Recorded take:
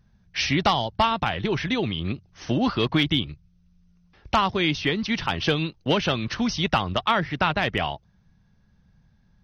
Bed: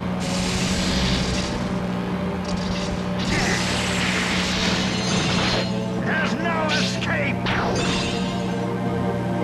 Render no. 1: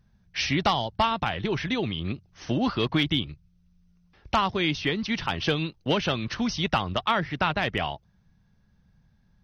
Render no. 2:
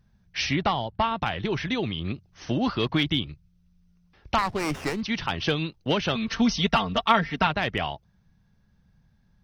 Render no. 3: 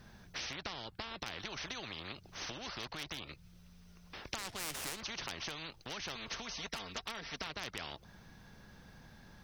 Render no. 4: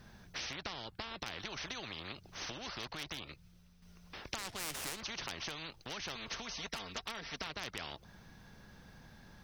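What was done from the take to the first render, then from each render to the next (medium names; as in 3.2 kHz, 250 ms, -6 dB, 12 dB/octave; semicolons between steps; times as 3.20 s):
trim -2.5 dB
0.56–1.22 s: distance through air 220 m; 4.38–5.01 s: sliding maximum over 9 samples; 6.15–7.47 s: comb 4.4 ms, depth 95%
compression 4:1, threshold -35 dBFS, peak gain reduction 17.5 dB; spectrum-flattening compressor 4:1
3.18–3.82 s: fade out, to -7 dB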